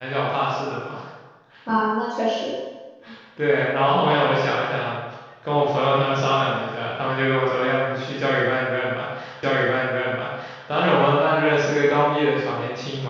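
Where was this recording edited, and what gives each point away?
9.43 repeat of the last 1.22 s

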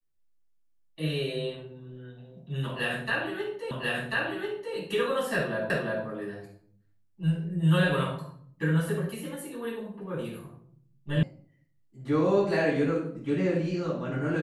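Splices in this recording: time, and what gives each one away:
3.71 repeat of the last 1.04 s
5.7 repeat of the last 0.35 s
11.23 sound cut off

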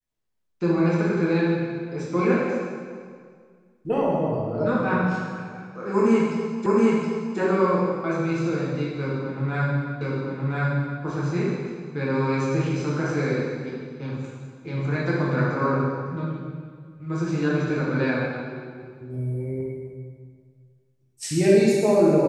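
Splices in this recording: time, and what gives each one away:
6.66 repeat of the last 0.72 s
10.01 repeat of the last 1.02 s

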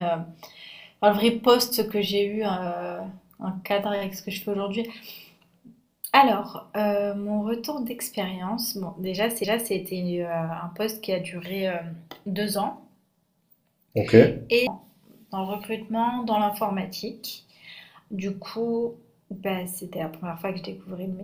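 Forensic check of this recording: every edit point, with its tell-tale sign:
9.44 repeat of the last 0.29 s
14.67 sound cut off

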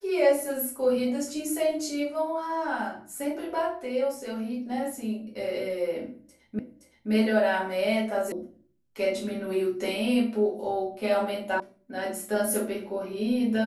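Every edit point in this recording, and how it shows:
6.59 repeat of the last 0.52 s
8.32 sound cut off
11.6 sound cut off

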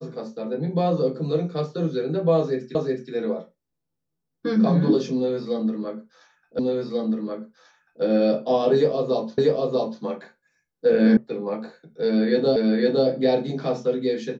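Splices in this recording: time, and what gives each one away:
2.75 repeat of the last 0.37 s
6.59 repeat of the last 1.44 s
9.38 repeat of the last 0.64 s
11.17 sound cut off
12.56 repeat of the last 0.51 s

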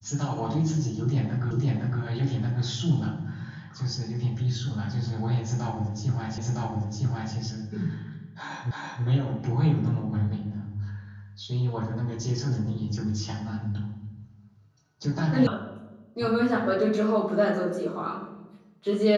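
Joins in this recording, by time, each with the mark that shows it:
1.51 repeat of the last 0.51 s
6.38 repeat of the last 0.96 s
8.71 repeat of the last 0.33 s
15.47 sound cut off

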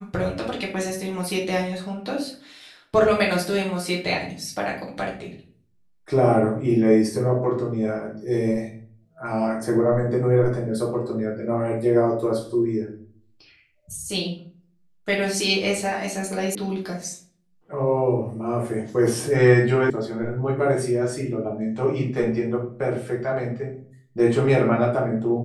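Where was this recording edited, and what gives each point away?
16.55 sound cut off
19.9 sound cut off

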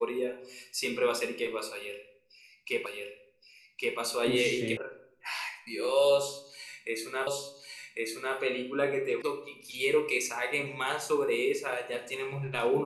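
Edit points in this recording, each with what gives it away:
2.86 repeat of the last 1.12 s
4.77 sound cut off
7.27 repeat of the last 1.1 s
9.22 sound cut off

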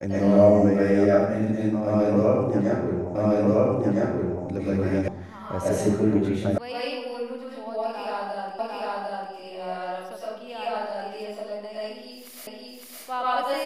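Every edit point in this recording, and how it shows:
3.15 repeat of the last 1.31 s
5.08 sound cut off
6.58 sound cut off
8.59 repeat of the last 0.75 s
12.47 repeat of the last 0.56 s

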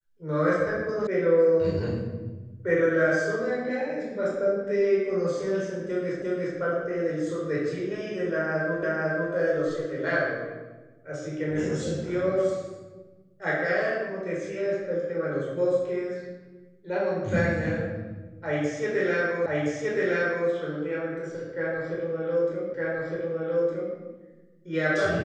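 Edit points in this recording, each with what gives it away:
1.07 sound cut off
6.22 repeat of the last 0.35 s
8.83 repeat of the last 0.5 s
19.46 repeat of the last 1.02 s
22.74 repeat of the last 1.21 s

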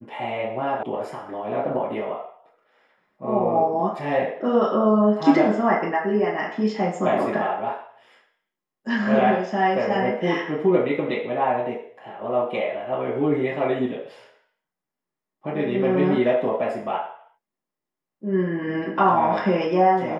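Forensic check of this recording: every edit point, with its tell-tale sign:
0.83 sound cut off

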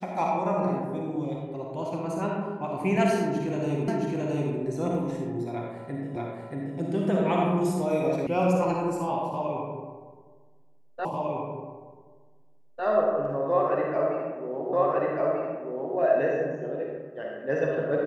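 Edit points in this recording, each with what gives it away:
3.88 repeat of the last 0.67 s
6.16 repeat of the last 0.63 s
8.27 sound cut off
11.05 repeat of the last 1.8 s
14.73 repeat of the last 1.24 s

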